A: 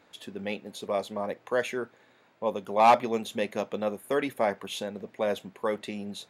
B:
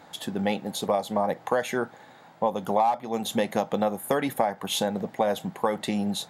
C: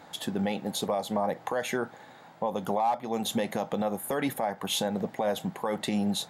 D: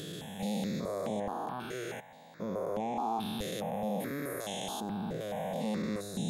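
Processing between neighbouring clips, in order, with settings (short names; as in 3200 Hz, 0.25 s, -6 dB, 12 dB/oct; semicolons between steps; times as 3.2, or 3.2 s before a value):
thirty-one-band EQ 160 Hz +9 dB, 400 Hz -5 dB, 800 Hz +10 dB, 2500 Hz -7 dB, 8000 Hz +3 dB, 12500 Hz +6 dB; compressor 16:1, threshold -29 dBFS, peak gain reduction 22.5 dB; gain +9 dB
limiter -18.5 dBFS, peak gain reduction 10 dB
stepped spectrum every 0.4 s; step phaser 4.7 Hz 230–4600 Hz; gain +1.5 dB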